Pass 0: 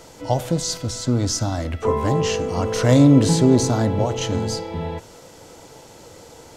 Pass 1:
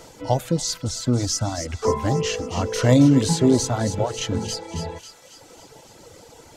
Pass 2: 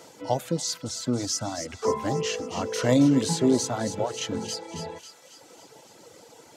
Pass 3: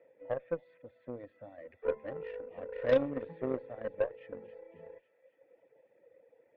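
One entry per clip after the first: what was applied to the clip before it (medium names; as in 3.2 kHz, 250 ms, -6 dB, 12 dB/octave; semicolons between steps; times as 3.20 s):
reverb removal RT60 1.3 s; feedback echo behind a high-pass 273 ms, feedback 56%, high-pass 1.9 kHz, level -8.5 dB
high-pass 170 Hz 12 dB/octave; trim -3.5 dB
cascade formant filter e; Chebyshev shaper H 3 -12 dB, 4 -30 dB, 5 -18 dB, 7 -22 dB, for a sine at -18 dBFS; trim +5 dB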